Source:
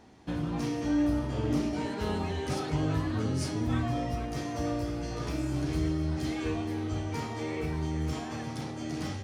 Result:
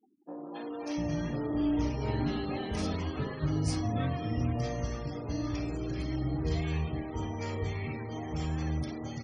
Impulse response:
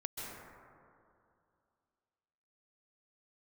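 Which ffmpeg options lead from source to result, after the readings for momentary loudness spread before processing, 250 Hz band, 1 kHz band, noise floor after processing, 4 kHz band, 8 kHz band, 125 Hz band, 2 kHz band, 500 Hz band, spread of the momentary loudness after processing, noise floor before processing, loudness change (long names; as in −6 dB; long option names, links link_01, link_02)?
6 LU, −2.5 dB, −2.5 dB, −41 dBFS, −2.5 dB, −3.5 dB, −0.5 dB, −2.5 dB, −2.0 dB, 7 LU, −38 dBFS, −1.5 dB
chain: -filter_complex "[0:a]afftfilt=real='re*gte(hypot(re,im),0.00708)':imag='im*gte(hypot(re,im),0.00708)':win_size=1024:overlap=0.75,bandreject=frequency=1500:width=12,aeval=exprs='0.141*(cos(1*acos(clip(val(0)/0.141,-1,1)))-cos(1*PI/2))+0.00224*(cos(6*acos(clip(val(0)/0.141,-1,1)))-cos(6*PI/2))':channel_layout=same,acrossover=split=320|1000[link_01][link_02][link_03];[link_03]adelay=270[link_04];[link_01]adelay=700[link_05];[link_05][link_02][link_04]amix=inputs=3:normalize=0,aresample=22050,aresample=44100"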